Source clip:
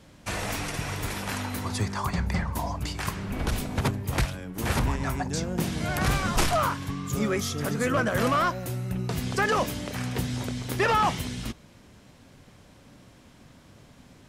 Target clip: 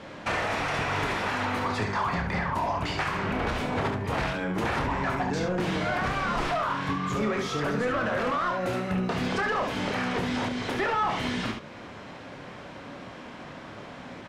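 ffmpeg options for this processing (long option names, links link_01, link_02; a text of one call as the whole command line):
ffmpeg -i in.wav -filter_complex "[0:a]asplit=2[link_01][link_02];[link_02]highpass=frequency=720:poles=1,volume=23dB,asoftclip=type=tanh:threshold=-13.5dB[link_03];[link_01][link_03]amix=inputs=2:normalize=0,lowpass=frequency=2000:poles=1,volume=-6dB,aemphasis=mode=reproduction:type=50fm,aecho=1:1:28|70:0.473|0.473,alimiter=limit=-19.5dB:level=0:latency=1:release=321" out.wav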